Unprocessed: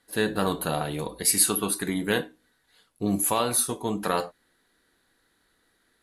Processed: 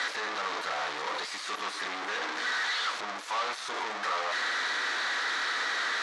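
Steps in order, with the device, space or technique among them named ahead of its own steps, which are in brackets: home computer beeper (infinite clipping; speaker cabinet 770–5400 Hz, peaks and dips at 1200 Hz +5 dB, 1900 Hz +3 dB, 2800 Hz -4 dB, 4900 Hz -3 dB)

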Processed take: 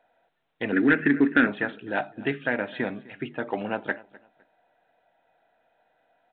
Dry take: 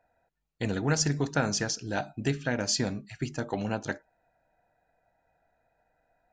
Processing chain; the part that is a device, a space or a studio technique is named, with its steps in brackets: 0.72–1.47 EQ curve 170 Hz 0 dB, 260 Hz +14 dB, 890 Hz -13 dB, 1600 Hz +9 dB, 2600 Hz +4 dB, 3900 Hz -30 dB; feedback echo 0.255 s, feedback 26%, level -21 dB; dynamic EQ 1900 Hz, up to +5 dB, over -45 dBFS, Q 2.4; telephone (BPF 260–3500 Hz; soft clip -12.5 dBFS, distortion -19 dB; gain +4 dB; µ-law 64 kbps 8000 Hz)

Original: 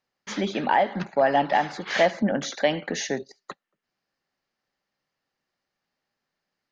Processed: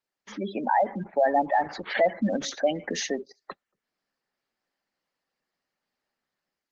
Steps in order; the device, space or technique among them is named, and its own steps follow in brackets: noise-suppressed video call (HPF 170 Hz 24 dB/oct; spectral gate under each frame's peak -15 dB strong; AGC gain up to 7 dB; gain -7.5 dB; Opus 16 kbps 48000 Hz)

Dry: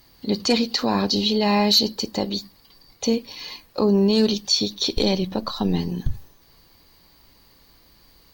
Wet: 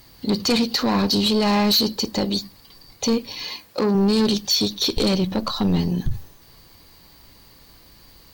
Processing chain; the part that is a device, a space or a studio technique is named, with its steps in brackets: open-reel tape (soft clip -19 dBFS, distortion -10 dB; bell 110 Hz +3.5 dB 1.11 oct; white noise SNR 39 dB); 3.47–3.95 HPF 160 Hz 6 dB/oct; gain +4.5 dB

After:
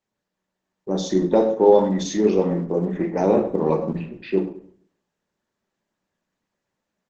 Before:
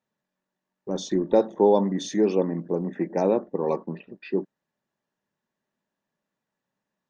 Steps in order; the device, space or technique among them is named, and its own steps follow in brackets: 3.37–3.94 tone controls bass +7 dB, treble -4 dB; de-hum 103.3 Hz, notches 2; speakerphone in a meeting room (reverb RT60 0.50 s, pre-delay 7 ms, DRR 2.5 dB; speakerphone echo 0.1 s, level -17 dB; AGC gain up to 3 dB; Opus 12 kbps 48000 Hz)

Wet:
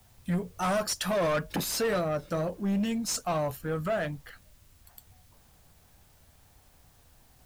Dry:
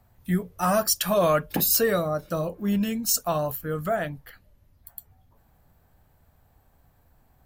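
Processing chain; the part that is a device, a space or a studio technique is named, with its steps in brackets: compact cassette (soft clip -23.5 dBFS, distortion -10 dB; LPF 9000 Hz 12 dB/oct; wow and flutter; white noise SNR 32 dB)

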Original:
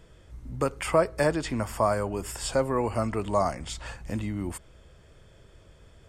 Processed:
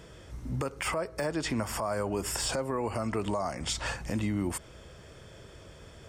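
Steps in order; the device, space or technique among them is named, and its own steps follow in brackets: broadcast voice chain (HPF 98 Hz 6 dB/oct; de-esser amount 70%; compressor 5:1, threshold -33 dBFS, peak gain reduction 15 dB; bell 5600 Hz +4.5 dB 0.26 oct; limiter -28 dBFS, peak gain reduction 9 dB); gain +7 dB

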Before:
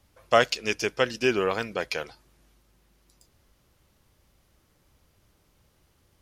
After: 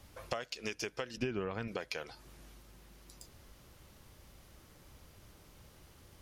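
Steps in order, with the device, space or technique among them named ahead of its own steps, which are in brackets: serial compression, leveller first (compressor 2.5:1, threshold -29 dBFS, peak gain reduction 10.5 dB; compressor 6:1, threshold -43 dBFS, peak gain reduction 18.5 dB); 1.17–1.68 tone controls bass +11 dB, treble -11 dB; gain +6.5 dB

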